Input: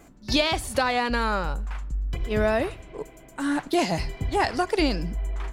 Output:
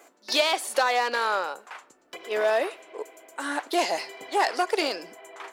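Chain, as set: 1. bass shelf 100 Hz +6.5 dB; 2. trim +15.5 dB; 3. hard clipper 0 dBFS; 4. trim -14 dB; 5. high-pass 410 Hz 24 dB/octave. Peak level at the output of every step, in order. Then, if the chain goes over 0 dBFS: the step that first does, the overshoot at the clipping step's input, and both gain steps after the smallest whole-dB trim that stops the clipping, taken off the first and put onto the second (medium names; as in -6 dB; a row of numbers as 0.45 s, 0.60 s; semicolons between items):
-9.5 dBFS, +6.0 dBFS, 0.0 dBFS, -14.0 dBFS, -9.0 dBFS; step 2, 6.0 dB; step 2 +9.5 dB, step 4 -8 dB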